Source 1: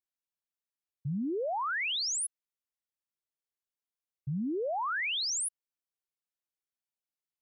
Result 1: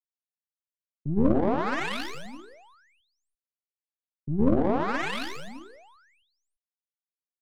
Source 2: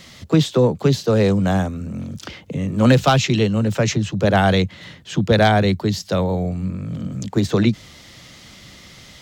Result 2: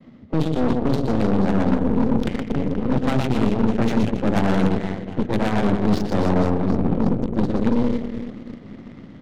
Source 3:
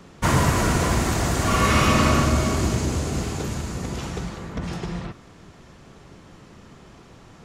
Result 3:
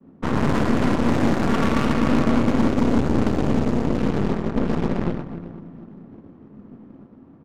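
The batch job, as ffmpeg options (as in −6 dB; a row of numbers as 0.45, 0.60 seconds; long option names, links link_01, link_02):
-af "bandreject=frequency=60:width_type=h:width=6,bandreject=frequency=120:width_type=h:width=6,bandreject=frequency=180:width_type=h:width=6,bandreject=frequency=240:width_type=h:width=6,bandreject=frequency=300:width_type=h:width=6,bandreject=frequency=360:width_type=h:width=6,bandreject=frequency=420:width_type=h:width=6,bandreject=frequency=480:width_type=h:width=6,agate=range=-33dB:threshold=-41dB:ratio=3:detection=peak,highpass=frequency=77:width=0.5412,highpass=frequency=77:width=1.3066,equalizer=frequency=250:width_type=o:width=0.85:gain=15,areverse,acompressor=threshold=-19dB:ratio=20,areverse,aecho=1:1:120|276|478.8|742.4|1085:0.631|0.398|0.251|0.158|0.1,aeval=exprs='0.422*(cos(1*acos(clip(val(0)/0.422,-1,1)))-cos(1*PI/2))+0.075*(cos(8*acos(clip(val(0)/0.422,-1,1)))-cos(8*PI/2))':channel_layout=same,adynamicsmooth=sensitivity=2:basefreq=990"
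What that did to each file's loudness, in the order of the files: +4.5, −3.0, +1.0 LU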